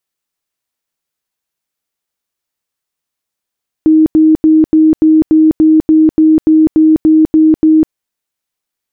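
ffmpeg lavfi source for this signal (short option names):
-f lavfi -i "aevalsrc='0.668*sin(2*PI*314*mod(t,0.29))*lt(mod(t,0.29),63/314)':d=4.06:s=44100"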